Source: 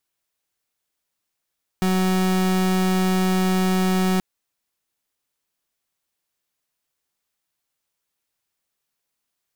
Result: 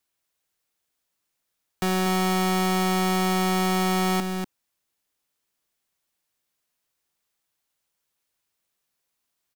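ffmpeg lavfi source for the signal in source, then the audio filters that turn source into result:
-f lavfi -i "aevalsrc='0.106*(2*lt(mod(186*t,1),0.36)-1)':duration=2.38:sample_rate=44100"
-filter_complex "[0:a]aecho=1:1:241:0.422,acrossover=split=370|470|2300[link_01][link_02][link_03][link_04];[link_01]asoftclip=type=tanh:threshold=-25.5dB[link_05];[link_05][link_02][link_03][link_04]amix=inputs=4:normalize=0"

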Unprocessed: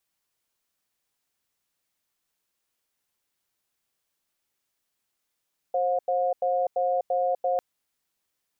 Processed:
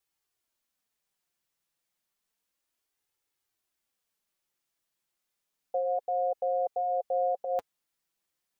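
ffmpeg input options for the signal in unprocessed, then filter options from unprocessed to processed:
-f lavfi -i "aevalsrc='0.0596*(sin(2*PI*531*t)+sin(2*PI*718*t))*clip(min(mod(t,0.34),0.25-mod(t,0.34))/0.005,0,1)':duration=1.85:sample_rate=44100"
-af "flanger=delay=2.3:depth=3.7:regen=-33:speed=0.31:shape=sinusoidal"

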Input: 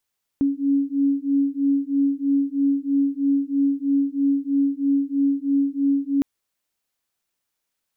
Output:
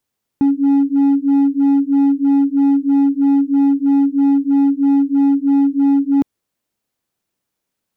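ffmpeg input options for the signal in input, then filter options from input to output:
-f lavfi -i "aevalsrc='0.0891*(sin(2*PI*277*t)+sin(2*PI*280.1*t))':duration=5.81:sample_rate=44100"
-af "asoftclip=type=hard:threshold=-20.5dB,equalizer=frequency=190:width=0.31:gain=10.5"

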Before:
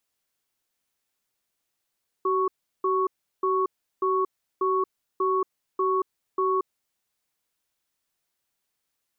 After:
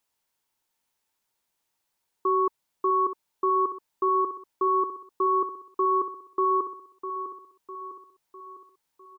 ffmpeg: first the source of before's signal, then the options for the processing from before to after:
-f lavfi -i "aevalsrc='0.0668*(sin(2*PI*379*t)+sin(2*PI*1110*t))*clip(min(mod(t,0.59),0.23-mod(t,0.59))/0.005,0,1)':duration=4.63:sample_rate=44100"
-filter_complex "[0:a]equalizer=frequency=910:width_type=o:width=0.24:gain=10,asplit=2[link_01][link_02];[link_02]aecho=0:1:653|1306|1959|2612|3265|3918:0.316|0.161|0.0823|0.0419|0.0214|0.0109[link_03];[link_01][link_03]amix=inputs=2:normalize=0"

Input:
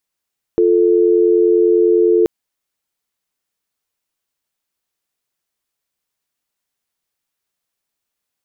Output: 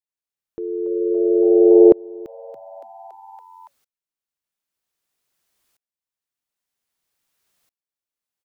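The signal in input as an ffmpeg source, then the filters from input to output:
-f lavfi -i "aevalsrc='0.251*(sin(2*PI*350*t)+sin(2*PI*440*t))':duration=1.68:sample_rate=44100"
-filter_complex "[0:a]asplit=6[link_01][link_02][link_03][link_04][link_05][link_06];[link_02]adelay=282,afreqshift=110,volume=-16dB[link_07];[link_03]adelay=564,afreqshift=220,volume=-21.8dB[link_08];[link_04]adelay=846,afreqshift=330,volume=-27.7dB[link_09];[link_05]adelay=1128,afreqshift=440,volume=-33.5dB[link_10];[link_06]adelay=1410,afreqshift=550,volume=-39.4dB[link_11];[link_01][link_07][link_08][link_09][link_10][link_11]amix=inputs=6:normalize=0,alimiter=level_in=11.5dB:limit=-1dB:release=50:level=0:latency=1,aeval=exprs='val(0)*pow(10,-30*if(lt(mod(-0.52*n/s,1),2*abs(-0.52)/1000),1-mod(-0.52*n/s,1)/(2*abs(-0.52)/1000),(mod(-0.52*n/s,1)-2*abs(-0.52)/1000)/(1-2*abs(-0.52)/1000))/20)':channel_layout=same"

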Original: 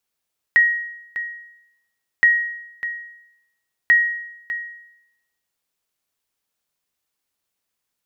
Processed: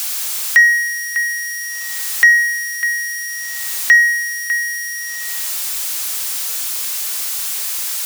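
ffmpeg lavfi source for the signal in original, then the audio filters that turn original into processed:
-f lavfi -i "aevalsrc='0.422*(sin(2*PI*1890*mod(t,1.67))*exp(-6.91*mod(t,1.67)/0.84)+0.224*sin(2*PI*1890*max(mod(t,1.67)-0.6,0))*exp(-6.91*max(mod(t,1.67)-0.6,0)/0.84))':duration=5.01:sample_rate=44100"
-filter_complex "[0:a]aeval=exprs='val(0)+0.5*0.0376*sgn(val(0))':channel_layout=same,bass=frequency=250:gain=-14,treble=frequency=4000:gain=7,acrossover=split=1000[link_01][link_02];[link_02]acontrast=78[link_03];[link_01][link_03]amix=inputs=2:normalize=0"

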